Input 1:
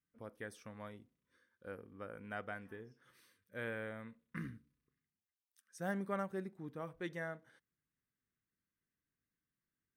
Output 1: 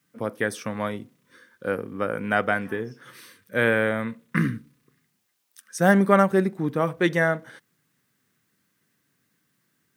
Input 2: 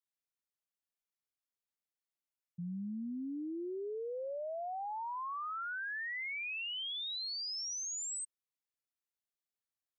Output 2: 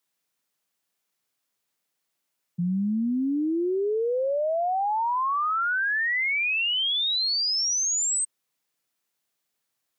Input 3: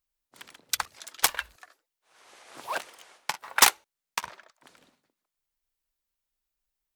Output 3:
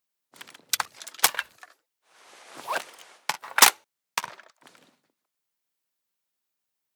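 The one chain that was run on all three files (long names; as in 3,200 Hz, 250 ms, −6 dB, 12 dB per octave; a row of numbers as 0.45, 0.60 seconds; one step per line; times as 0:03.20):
high-pass filter 110 Hz 24 dB per octave
loudness normalisation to −24 LKFS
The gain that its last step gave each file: +21.5, +14.5, +2.5 decibels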